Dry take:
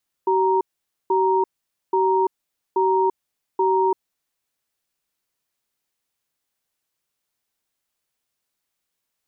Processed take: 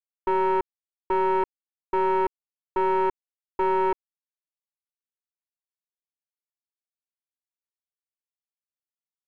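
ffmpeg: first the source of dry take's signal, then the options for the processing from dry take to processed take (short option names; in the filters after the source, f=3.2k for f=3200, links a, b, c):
-f lavfi -i "aevalsrc='0.119*(sin(2*PI*381*t)+sin(2*PI*935*t))*clip(min(mod(t,0.83),0.34-mod(t,0.83))/0.005,0,1)':d=3.7:s=44100"
-af "aeval=exprs='(tanh(7.08*val(0)+0.45)-tanh(0.45))/7.08':c=same,aeval=exprs='sgn(val(0))*max(abs(val(0))-0.00126,0)':c=same"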